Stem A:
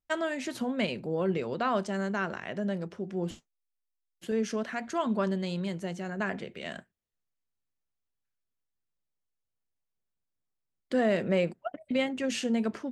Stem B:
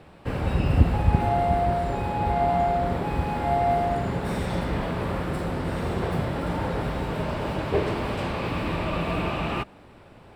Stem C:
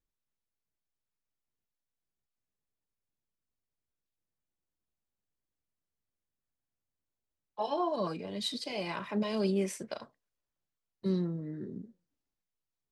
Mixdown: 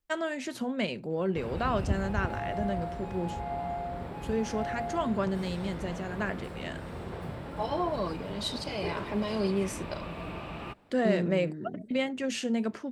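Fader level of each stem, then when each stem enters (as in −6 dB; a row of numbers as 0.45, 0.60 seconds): −1.0, −12.0, +1.0 decibels; 0.00, 1.10, 0.00 seconds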